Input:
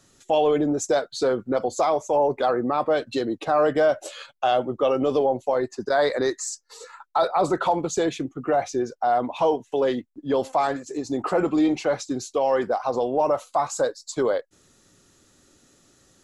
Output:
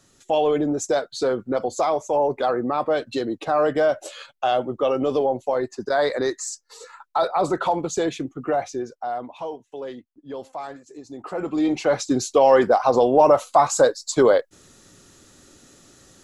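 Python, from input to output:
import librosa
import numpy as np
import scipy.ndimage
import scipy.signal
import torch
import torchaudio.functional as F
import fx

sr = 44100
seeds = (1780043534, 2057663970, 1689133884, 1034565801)

y = fx.gain(x, sr, db=fx.line((8.47, 0.0), (9.5, -11.0), (11.16, -11.0), (11.68, 0.0), (12.15, 7.0)))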